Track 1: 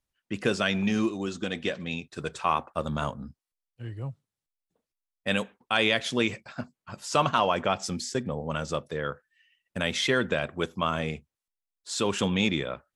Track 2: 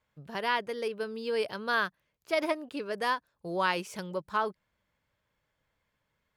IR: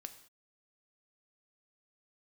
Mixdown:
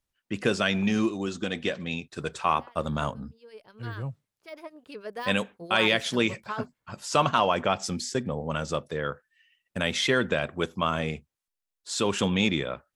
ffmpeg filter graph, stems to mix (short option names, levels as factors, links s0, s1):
-filter_complex "[0:a]volume=1.12[s0];[1:a]deesser=0.85,acrossover=split=1500[s1][s2];[s1]aeval=exprs='val(0)*(1-0.7/2+0.7/2*cos(2*PI*9.2*n/s))':c=same[s3];[s2]aeval=exprs='val(0)*(1-0.7/2-0.7/2*cos(2*PI*9.2*n/s))':c=same[s4];[s3][s4]amix=inputs=2:normalize=0,adelay=2150,volume=0.841,afade=t=in:st=3.31:d=0.48:silence=0.223872,afade=t=in:st=4.69:d=0.21:silence=0.354813[s5];[s0][s5]amix=inputs=2:normalize=0"